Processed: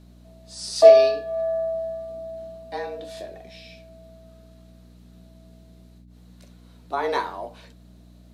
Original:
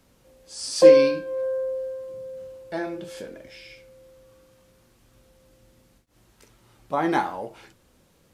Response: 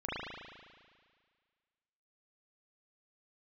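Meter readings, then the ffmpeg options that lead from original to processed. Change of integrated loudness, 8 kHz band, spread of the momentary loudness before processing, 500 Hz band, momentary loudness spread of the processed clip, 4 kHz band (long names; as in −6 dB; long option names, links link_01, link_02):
+1.5 dB, −2.0 dB, 25 LU, +1.5 dB, 25 LU, +0.5 dB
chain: -af "afreqshift=130,aeval=exprs='val(0)+0.00501*(sin(2*PI*60*n/s)+sin(2*PI*2*60*n/s)/2+sin(2*PI*3*60*n/s)/3+sin(2*PI*4*60*n/s)/4+sin(2*PI*5*60*n/s)/5)':channel_layout=same,equalizer=frequency=200:width_type=o:width=0.33:gain=9,equalizer=frequency=630:width_type=o:width=0.33:gain=5,equalizer=frequency=4000:width_type=o:width=0.33:gain=10,volume=-3dB"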